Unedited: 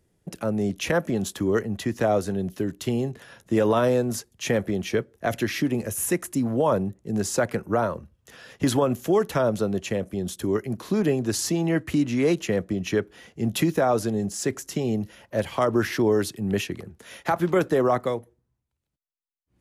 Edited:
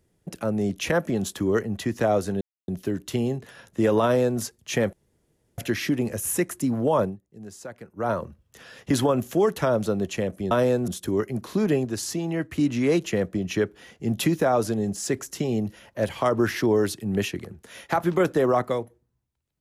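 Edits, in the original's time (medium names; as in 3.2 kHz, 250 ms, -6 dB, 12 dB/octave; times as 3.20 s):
2.41 s: insert silence 0.27 s
3.76–4.13 s: copy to 10.24 s
4.66–5.31 s: room tone
6.75–7.84 s: dip -15.5 dB, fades 0.15 s
11.21–11.95 s: gain -4 dB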